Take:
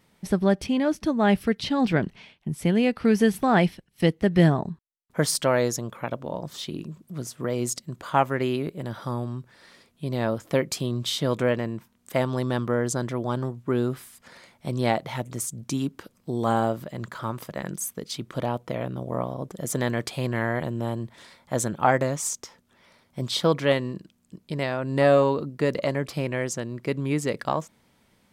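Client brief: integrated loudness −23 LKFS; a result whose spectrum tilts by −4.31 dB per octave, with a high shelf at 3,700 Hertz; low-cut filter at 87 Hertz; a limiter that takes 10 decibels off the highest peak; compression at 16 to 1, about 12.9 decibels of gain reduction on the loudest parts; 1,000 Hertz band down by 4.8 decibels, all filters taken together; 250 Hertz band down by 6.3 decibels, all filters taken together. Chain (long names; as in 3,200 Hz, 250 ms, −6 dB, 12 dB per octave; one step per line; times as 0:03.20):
high-pass filter 87 Hz
parametric band 250 Hz −8 dB
parametric band 1,000 Hz −6.5 dB
high-shelf EQ 3,700 Hz +4.5 dB
downward compressor 16 to 1, threshold −30 dBFS
level +15.5 dB
brickwall limiter −11 dBFS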